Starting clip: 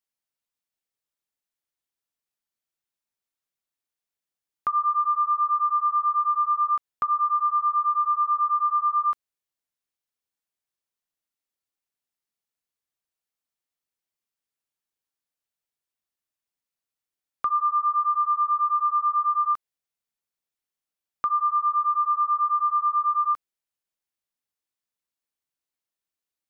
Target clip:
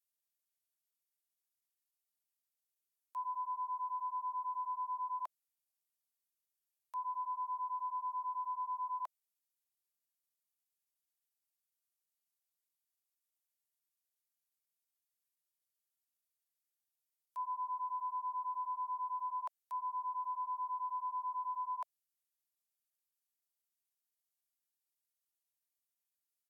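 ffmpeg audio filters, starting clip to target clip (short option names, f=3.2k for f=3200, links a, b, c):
-filter_complex "[0:a]areverse,asplit=2[a][b];[b]alimiter=level_in=0.5dB:limit=-24dB:level=0:latency=1:release=77,volume=-0.5dB,volume=-2.5dB[c];[a][c]amix=inputs=2:normalize=0,asetrate=37084,aresample=44100,atempo=1.18921,highpass=f=650:t=q:w=4.2,aderivative,volume=-6.5dB"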